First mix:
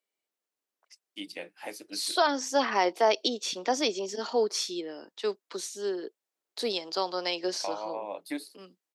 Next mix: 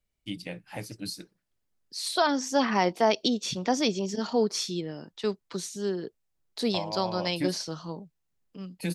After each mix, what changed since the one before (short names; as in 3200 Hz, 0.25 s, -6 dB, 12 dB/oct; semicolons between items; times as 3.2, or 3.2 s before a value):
first voice: entry -0.90 s; master: remove HPF 310 Hz 24 dB/oct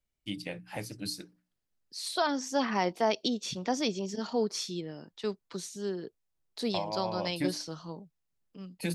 first voice: add notches 60/120/180/240/300 Hz; second voice -4.5 dB